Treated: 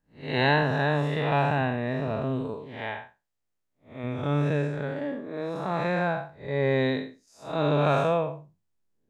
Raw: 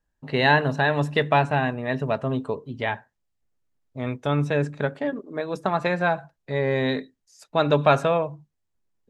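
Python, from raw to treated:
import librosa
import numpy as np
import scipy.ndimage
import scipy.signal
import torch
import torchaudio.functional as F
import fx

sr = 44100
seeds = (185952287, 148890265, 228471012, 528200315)

y = fx.spec_blur(x, sr, span_ms=178.0)
y = fx.low_shelf(y, sr, hz=280.0, db=-7.5, at=(2.54, 4.04))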